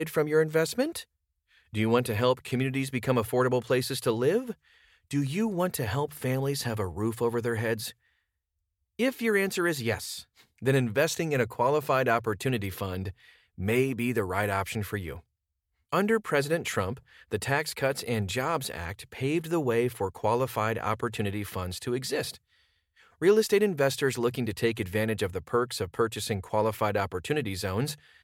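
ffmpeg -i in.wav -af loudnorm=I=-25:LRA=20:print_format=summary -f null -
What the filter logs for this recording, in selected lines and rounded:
Input Integrated:    -28.6 LUFS
Input True Peak:     -10.4 dBTP
Input LRA:             2.7 LU
Input Threshold:     -39.0 LUFS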